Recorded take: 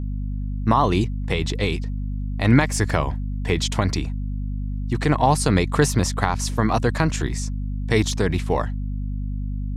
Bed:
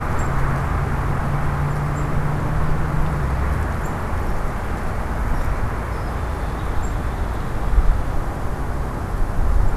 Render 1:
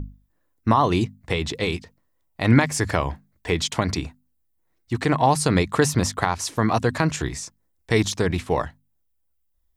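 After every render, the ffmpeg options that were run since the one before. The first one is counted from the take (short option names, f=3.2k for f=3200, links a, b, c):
-af "bandreject=f=50:t=h:w=6,bandreject=f=100:t=h:w=6,bandreject=f=150:t=h:w=6,bandreject=f=200:t=h:w=6,bandreject=f=250:t=h:w=6"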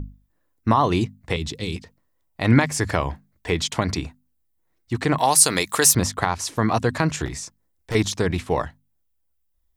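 -filter_complex "[0:a]asettb=1/sr,asplit=3[a][b][c];[a]atrim=end=1.364[d];[b]atrim=start=1.36:end=1.76,asetpts=PTS-STARTPTS,afade=t=in:d=0.004:c=qsin,afade=t=out:st=0.396:d=0.004:c=qsin,acrossover=split=340|3000[e][f][g];[f]acompressor=threshold=-51dB:ratio=2:attack=3.2:release=140:knee=2.83:detection=peak[h];[e][h][g]amix=inputs=3:normalize=0[i];[c]atrim=start=1.756[j];[d][i]acrossfade=d=0.004:c1=hsin:c2=qsin[k];[k][j]acrossfade=d=0.004:c1=qsin:c2=hsin,asettb=1/sr,asplit=3[l][m][n];[l]atrim=end=5.184[o];[m]atrim=start=5.18:end=5.95,asetpts=PTS-STARTPTS,afade=t=in:d=0.004:c=qsin,afade=t=out:st=0.766:d=0.004:c=qsin,aemphasis=mode=production:type=riaa[p];[n]atrim=start=5.946[q];[o][p]acrossfade=d=0.004:c1=hsin:c2=qsin[r];[r][q]acrossfade=d=0.004:c1=qsin:c2=hsin,asettb=1/sr,asplit=3[s][t][u];[s]atrim=end=7.254[v];[t]atrim=start=7.25:end=7.95,asetpts=PTS-STARTPTS,afade=t=in:d=0.004:c=qsin,afade=t=out:st=0.696:d=0.004:c=qsin,volume=23.5dB,asoftclip=hard,volume=-23.5dB[w];[u]atrim=start=7.946[x];[v][w]acrossfade=d=0.004:c1=hsin:c2=qsin[y];[y][x]acrossfade=d=0.004:c1=qsin:c2=hsin"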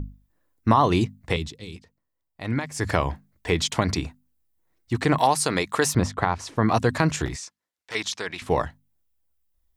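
-filter_complex "[0:a]asettb=1/sr,asplit=3[a][b][c];[a]atrim=end=5.274[d];[b]atrim=start=5.27:end=6.69,asetpts=PTS-STARTPTS,afade=t=in:d=0.004:c=qsin,afade=t=out:st=1.416:d=0.004:c=qsin,aemphasis=mode=reproduction:type=75kf[e];[c]atrim=start=6.686[f];[d][e]acrossfade=d=0.004:c1=hsin:c2=qsin[g];[g][f]acrossfade=d=0.004:c1=qsin:c2=hsin,asettb=1/sr,asplit=3[h][i][j];[h]atrim=end=7.364[k];[i]atrim=start=7.36:end=8.42,asetpts=PTS-STARTPTS,afade=t=in:d=0.004:c=qsin,afade=t=out:st=1.056:d=0.004:c=qsin,bandpass=f=2.8k:t=q:w=0.54[l];[j]atrim=start=8.416[m];[k][l]acrossfade=d=0.004:c1=hsin:c2=qsin[n];[n][m]acrossfade=d=0.004:c1=qsin:c2=hsin,asplit=3[o][p][q];[o]atrim=end=1.52,asetpts=PTS-STARTPTS,afade=t=out:st=1.38:d=0.14:silence=0.298538[r];[p]atrim=start=1.52:end=2.74,asetpts=PTS-STARTPTS,volume=-10.5dB[s];[q]atrim=start=2.74,asetpts=PTS-STARTPTS,afade=t=in:d=0.14:silence=0.298538[t];[r][s][t]concat=n=3:v=0:a=1"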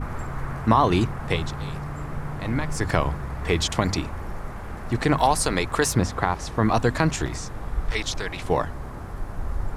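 -filter_complex "[1:a]volume=-10.5dB[a];[0:a][a]amix=inputs=2:normalize=0"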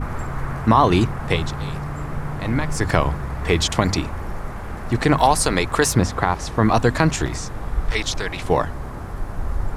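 -af "volume=4dB,alimiter=limit=-1dB:level=0:latency=1"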